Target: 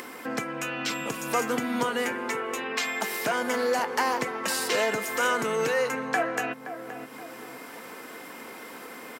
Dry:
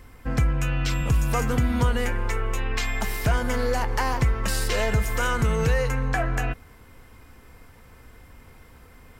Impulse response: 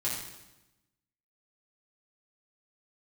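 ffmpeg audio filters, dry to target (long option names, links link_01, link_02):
-filter_complex "[0:a]highpass=frequency=250:width=0.5412,highpass=frequency=250:width=1.3066,asplit=2[link_01][link_02];[link_02]adelay=522,lowpass=frequency=810:poles=1,volume=-10.5dB,asplit=2[link_03][link_04];[link_04]adelay=522,lowpass=frequency=810:poles=1,volume=0.27,asplit=2[link_05][link_06];[link_06]adelay=522,lowpass=frequency=810:poles=1,volume=0.27[link_07];[link_01][link_03][link_05][link_07]amix=inputs=4:normalize=0,acompressor=mode=upward:threshold=-31dB:ratio=2.5,volume=1dB"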